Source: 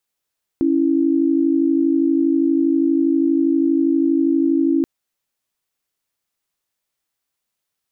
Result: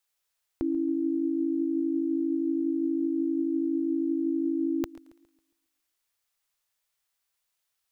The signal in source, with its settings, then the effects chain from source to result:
chord C#4/E4 sine, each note -16.5 dBFS 4.23 s
bell 220 Hz -13.5 dB 2 oct; thinning echo 0.112 s, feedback 49%, high-pass 420 Hz, level -23 dB; warbling echo 0.137 s, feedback 40%, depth 60 cents, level -19 dB

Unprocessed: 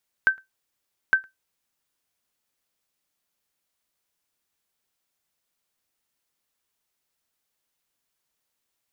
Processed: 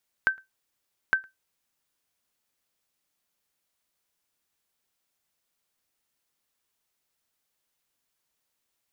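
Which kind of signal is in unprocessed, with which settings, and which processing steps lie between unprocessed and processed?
sonar ping 1550 Hz, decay 0.16 s, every 0.86 s, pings 2, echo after 0.11 s, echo -29 dB -9.5 dBFS
compressor 3:1, threshold -22 dBFS

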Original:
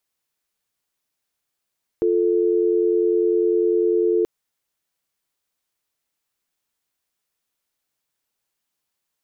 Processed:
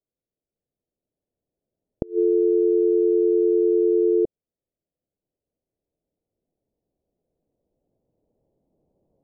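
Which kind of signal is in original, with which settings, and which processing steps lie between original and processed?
call progress tone dial tone, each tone -18.5 dBFS 2.23 s
recorder AGC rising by 5.3 dB/s; steep low-pass 620 Hz 36 dB/oct; flipped gate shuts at -11 dBFS, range -25 dB

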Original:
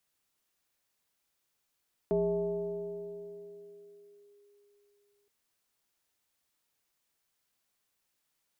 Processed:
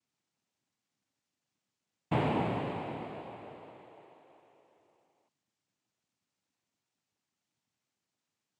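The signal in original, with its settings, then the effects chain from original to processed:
FM tone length 3.17 s, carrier 408 Hz, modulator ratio 0.57, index 0.87, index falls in 2.29 s linear, decay 3.92 s, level -24 dB
minimum comb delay 0.86 ms; tilt shelf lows +7 dB; noise vocoder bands 4

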